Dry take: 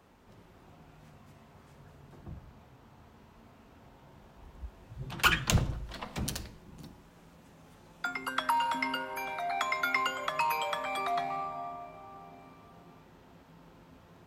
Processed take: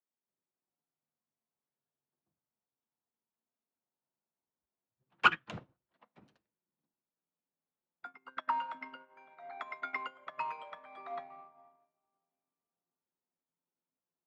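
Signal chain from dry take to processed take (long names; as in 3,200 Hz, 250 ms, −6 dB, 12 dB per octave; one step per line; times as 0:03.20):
band-pass filter 210–2,300 Hz
expander for the loud parts 2.5 to 1, over −51 dBFS
level +3.5 dB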